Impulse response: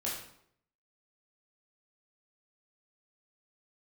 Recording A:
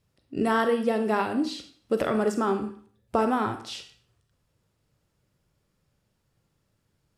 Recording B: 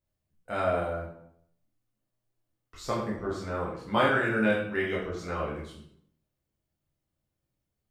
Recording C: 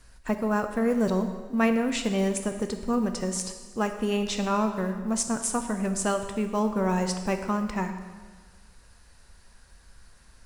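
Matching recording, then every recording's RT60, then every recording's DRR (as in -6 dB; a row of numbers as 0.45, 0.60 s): B; 0.50, 0.70, 1.5 s; 7.0, -6.0, 6.5 dB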